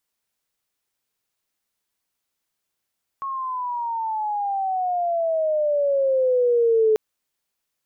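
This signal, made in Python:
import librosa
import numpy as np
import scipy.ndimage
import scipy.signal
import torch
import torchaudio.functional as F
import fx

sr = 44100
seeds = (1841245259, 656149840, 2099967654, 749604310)

y = fx.chirp(sr, length_s=3.74, from_hz=1100.0, to_hz=430.0, law='logarithmic', from_db=-25.5, to_db=-14.0)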